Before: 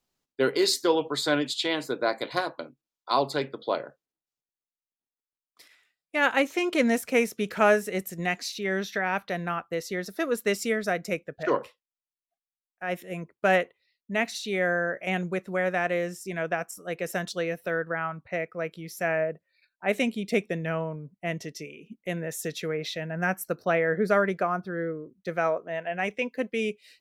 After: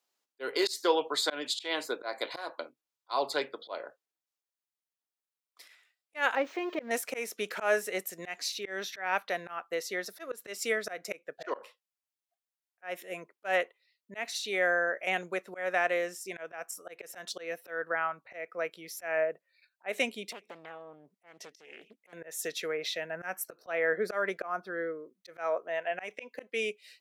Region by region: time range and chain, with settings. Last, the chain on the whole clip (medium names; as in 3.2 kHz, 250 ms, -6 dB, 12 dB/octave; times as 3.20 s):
6.35–6.91 s: zero-crossing glitches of -19.5 dBFS + de-esser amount 70% + distance through air 230 m
20.32–22.13 s: compression 5:1, threshold -40 dBFS + loudspeaker Doppler distortion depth 0.82 ms
whole clip: high-pass 480 Hz 12 dB/octave; slow attack 180 ms